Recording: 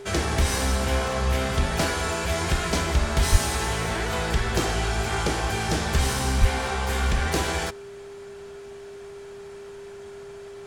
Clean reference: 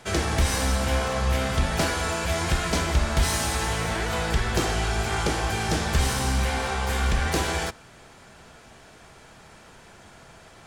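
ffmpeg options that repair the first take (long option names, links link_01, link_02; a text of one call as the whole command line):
ffmpeg -i in.wav -filter_complex "[0:a]bandreject=frequency=400:width=30,asplit=3[link_01][link_02][link_03];[link_01]afade=type=out:start_time=3.31:duration=0.02[link_04];[link_02]highpass=frequency=140:width=0.5412,highpass=frequency=140:width=1.3066,afade=type=in:start_time=3.31:duration=0.02,afade=type=out:start_time=3.43:duration=0.02[link_05];[link_03]afade=type=in:start_time=3.43:duration=0.02[link_06];[link_04][link_05][link_06]amix=inputs=3:normalize=0,asplit=3[link_07][link_08][link_09];[link_07]afade=type=out:start_time=6.4:duration=0.02[link_10];[link_08]highpass=frequency=140:width=0.5412,highpass=frequency=140:width=1.3066,afade=type=in:start_time=6.4:duration=0.02,afade=type=out:start_time=6.52:duration=0.02[link_11];[link_09]afade=type=in:start_time=6.52:duration=0.02[link_12];[link_10][link_11][link_12]amix=inputs=3:normalize=0" out.wav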